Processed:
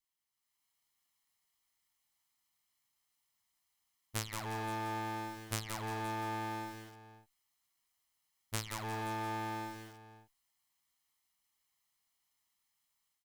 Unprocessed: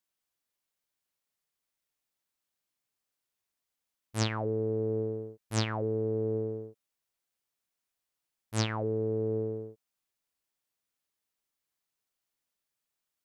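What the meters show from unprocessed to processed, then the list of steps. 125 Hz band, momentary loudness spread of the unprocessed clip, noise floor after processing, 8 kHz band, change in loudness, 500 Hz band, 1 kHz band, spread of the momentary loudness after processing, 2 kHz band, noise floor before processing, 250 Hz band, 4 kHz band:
-10.0 dB, 10 LU, -83 dBFS, -1.5 dB, -7.0 dB, -15.0 dB, +4.5 dB, 12 LU, +0.5 dB, under -85 dBFS, -8.0 dB, -5.0 dB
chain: minimum comb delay 0.98 ms; low shelf 380 Hz -10.5 dB; compressor 12:1, threshold -43 dBFS, peak gain reduction 17.5 dB; added harmonics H 3 -25 dB, 5 -42 dB, 6 -16 dB, 7 -26 dB, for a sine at -25 dBFS; AGC gain up to 9 dB; low shelf 110 Hz +9 dB; echo 0.522 s -16 dB; lo-fi delay 0.176 s, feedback 35%, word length 9-bit, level -5 dB; gain +3.5 dB

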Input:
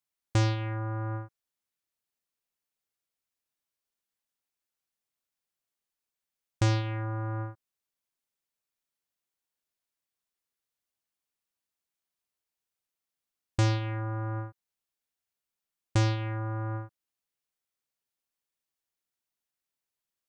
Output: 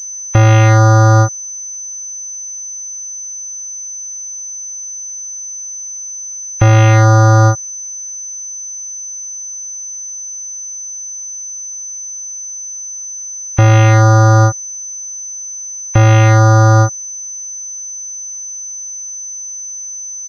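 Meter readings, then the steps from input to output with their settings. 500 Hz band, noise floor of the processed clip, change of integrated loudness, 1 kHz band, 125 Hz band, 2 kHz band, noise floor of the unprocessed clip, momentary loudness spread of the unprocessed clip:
+23.0 dB, -27 dBFS, +16.0 dB, +24.0 dB, +21.5 dB, +21.5 dB, under -85 dBFS, 12 LU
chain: comb 1.5 ms, depth 40%; in parallel at -1 dB: negative-ratio compressor -34 dBFS; on the sum: low shelf 82 Hz -6 dB; spectral gate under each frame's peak -30 dB strong; maximiser +25 dB; pulse-width modulation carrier 6100 Hz; gain -1 dB

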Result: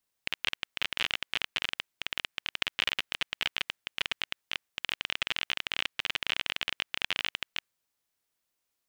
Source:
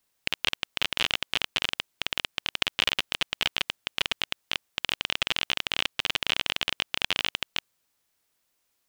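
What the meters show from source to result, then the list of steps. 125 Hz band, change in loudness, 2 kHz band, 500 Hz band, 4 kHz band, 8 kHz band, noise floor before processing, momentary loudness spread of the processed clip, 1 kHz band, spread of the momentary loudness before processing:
-7.5 dB, -4.5 dB, -3.0 dB, -7.0 dB, -5.0 dB, -7.0 dB, -75 dBFS, 5 LU, -5.0 dB, 5 LU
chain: dynamic EQ 1900 Hz, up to +6 dB, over -42 dBFS, Q 1.1; gain -7.5 dB

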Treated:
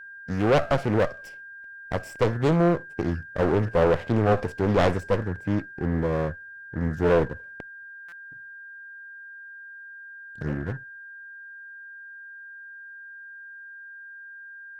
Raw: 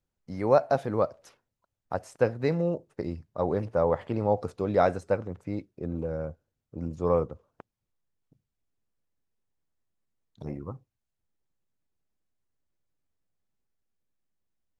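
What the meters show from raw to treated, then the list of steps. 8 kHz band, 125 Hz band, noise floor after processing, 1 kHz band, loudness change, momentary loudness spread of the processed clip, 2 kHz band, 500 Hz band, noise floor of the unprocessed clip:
n/a, +7.5 dB, -43 dBFS, +2.5 dB, +4.0 dB, 19 LU, +12.0 dB, +2.5 dB, -85 dBFS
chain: minimum comb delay 0.39 ms; whine 1600 Hz -49 dBFS; in parallel at -7.5 dB: sine folder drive 10 dB, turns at -9 dBFS; on the sum: harmonic-percussive split percussive -4 dB; stuck buffer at 8.08, samples 256, times 7; Doppler distortion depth 0.57 ms; gain -1 dB

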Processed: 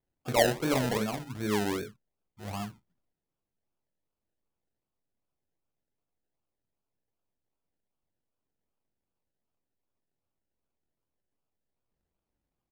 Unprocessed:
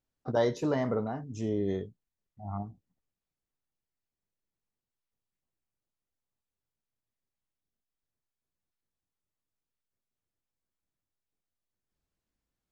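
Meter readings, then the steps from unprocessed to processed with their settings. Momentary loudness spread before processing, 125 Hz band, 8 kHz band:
15 LU, +0.5 dB, n/a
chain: early reflections 24 ms -6.5 dB, 38 ms -8.5 dB; decimation with a swept rate 31×, swing 60% 2.6 Hz

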